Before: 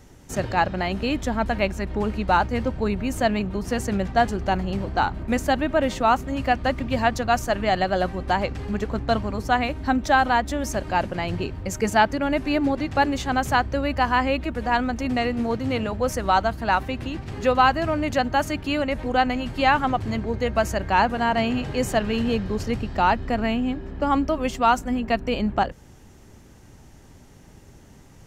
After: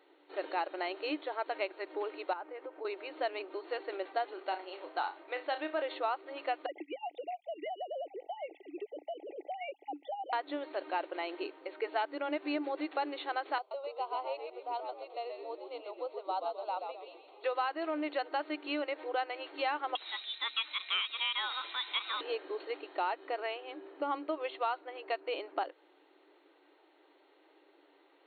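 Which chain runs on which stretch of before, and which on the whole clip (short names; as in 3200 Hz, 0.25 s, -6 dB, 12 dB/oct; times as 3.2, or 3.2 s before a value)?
2.33–2.85 LPF 2100 Hz + compressor 10:1, threshold -26 dBFS
4.33–5.82 HPF 590 Hz 6 dB/oct + overloaded stage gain 13.5 dB + flutter echo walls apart 5.5 m, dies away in 0.21 s
6.66–10.33 sine-wave speech + brick-wall FIR band-stop 870–1900 Hz + compressor 12:1, threshold -27 dBFS
13.58–17.44 ladder high-pass 330 Hz, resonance 25% + fixed phaser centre 720 Hz, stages 4 + frequency-shifting echo 0.129 s, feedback 40%, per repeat -82 Hz, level -6 dB
19.95–22.21 tilt +4.5 dB/oct + inverted band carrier 4000 Hz
whole clip: notch 1700 Hz, Q 16; FFT band-pass 290–4400 Hz; compressor 5:1, threshold -21 dBFS; gain -8.5 dB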